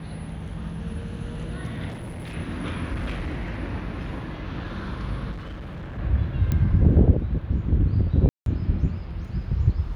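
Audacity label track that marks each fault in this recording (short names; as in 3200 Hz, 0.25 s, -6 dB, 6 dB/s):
1.880000	2.350000	clipped -32 dBFS
2.920000	3.580000	clipped -24.5 dBFS
5.310000	5.990000	clipped -32 dBFS
6.520000	6.520000	pop -13 dBFS
8.290000	8.460000	gap 0.172 s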